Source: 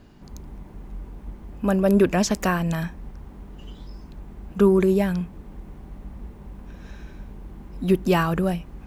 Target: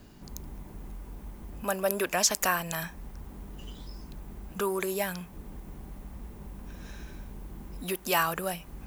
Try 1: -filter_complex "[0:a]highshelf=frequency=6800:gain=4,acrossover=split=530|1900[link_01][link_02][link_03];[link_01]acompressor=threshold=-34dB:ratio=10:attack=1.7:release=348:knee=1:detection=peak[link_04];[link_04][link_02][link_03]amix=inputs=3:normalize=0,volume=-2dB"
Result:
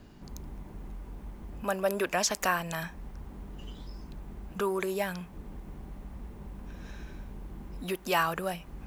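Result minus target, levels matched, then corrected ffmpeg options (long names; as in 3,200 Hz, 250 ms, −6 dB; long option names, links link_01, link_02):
8,000 Hz band −4.0 dB
-filter_complex "[0:a]highshelf=frequency=6800:gain=15,acrossover=split=530|1900[link_01][link_02][link_03];[link_01]acompressor=threshold=-34dB:ratio=10:attack=1.7:release=348:knee=1:detection=peak[link_04];[link_04][link_02][link_03]amix=inputs=3:normalize=0,volume=-2dB"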